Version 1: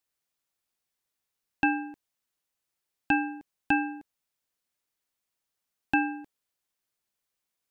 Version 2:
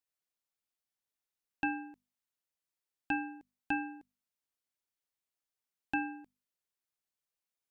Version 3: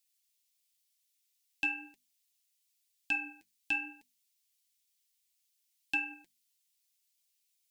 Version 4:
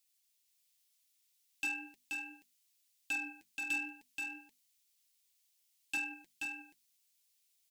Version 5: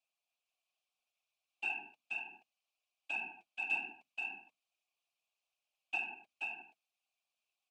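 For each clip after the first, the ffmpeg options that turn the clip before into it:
-af "bandreject=f=50:t=h:w=6,bandreject=f=100:t=h:w=6,bandreject=f=150:t=h:w=6,bandreject=f=200:t=h:w=6,bandreject=f=250:t=h:w=6,volume=0.376"
-af "aexciter=amount=5.5:drive=8.8:freq=2000,flanger=delay=3.6:depth=7.9:regen=44:speed=0.98:shape=triangular,volume=0.562"
-af "asoftclip=type=tanh:threshold=0.0237,aecho=1:1:479:0.631,volume=1.12"
-filter_complex "[0:a]asplit=3[s0][s1][s2];[s0]bandpass=f=730:t=q:w=8,volume=1[s3];[s1]bandpass=f=1090:t=q:w=8,volume=0.501[s4];[s2]bandpass=f=2440:t=q:w=8,volume=0.355[s5];[s3][s4][s5]amix=inputs=3:normalize=0,afftfilt=real='hypot(re,im)*cos(2*PI*random(0))':imag='hypot(re,im)*sin(2*PI*random(1))':win_size=512:overlap=0.75,volume=7.08"

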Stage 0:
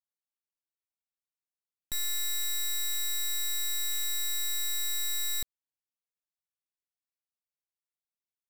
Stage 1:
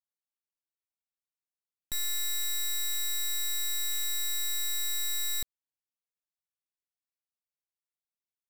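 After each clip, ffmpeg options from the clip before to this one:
-af anull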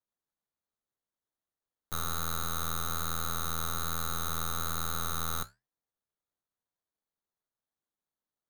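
-filter_complex "[0:a]acrossover=split=150[s0][s1];[s1]acrusher=samples=17:mix=1:aa=0.000001[s2];[s0][s2]amix=inputs=2:normalize=0,crystalizer=i=2:c=0,flanger=delay=7:depth=9.5:regen=-66:speed=1.2:shape=triangular"

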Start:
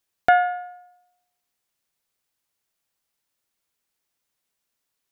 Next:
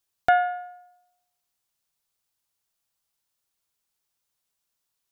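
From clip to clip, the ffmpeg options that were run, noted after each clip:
-af "equalizer=f=250:t=o:w=1:g=-5,equalizer=f=500:t=o:w=1:g=-4,equalizer=f=2000:t=o:w=1:g=-5"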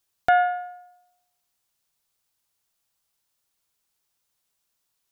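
-af "alimiter=limit=0.224:level=0:latency=1:release=118,volume=1.5"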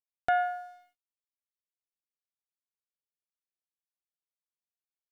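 -af "aeval=exprs='sgn(val(0))*max(abs(val(0))-0.002,0)':c=same,volume=0.422"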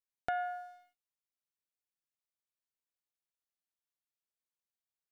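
-af "acompressor=threshold=0.0316:ratio=2.5,volume=0.668"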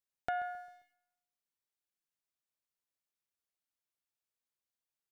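-filter_complex "[0:a]asplit=2[s0][s1];[s1]adelay=133,lowpass=f=2300:p=1,volume=0.158,asplit=2[s2][s3];[s3]adelay=133,lowpass=f=2300:p=1,volume=0.41,asplit=2[s4][s5];[s5]adelay=133,lowpass=f=2300:p=1,volume=0.41,asplit=2[s6][s7];[s7]adelay=133,lowpass=f=2300:p=1,volume=0.41[s8];[s0][s2][s4][s6][s8]amix=inputs=5:normalize=0,volume=0.891"

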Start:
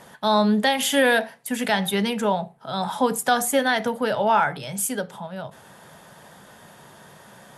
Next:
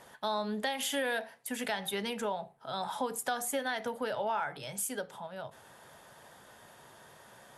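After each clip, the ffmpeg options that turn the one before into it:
-af "equalizer=f=180:w=1.8:g=-8.5,acompressor=threshold=0.0562:ratio=2.5,volume=0.447"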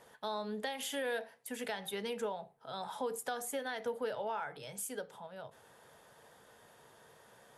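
-af "equalizer=f=460:t=o:w=0.21:g=9,volume=0.501"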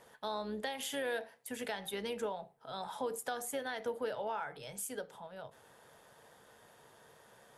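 -af "tremolo=f=140:d=0.261,volume=1.12"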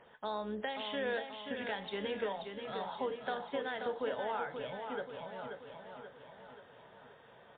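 -af "aecho=1:1:532|1064|1596|2128|2660|3192|3724:0.473|0.26|0.143|0.0787|0.0433|0.0238|0.0131,volume=1.12" -ar 8000 -c:a libmp3lame -b:a 24k

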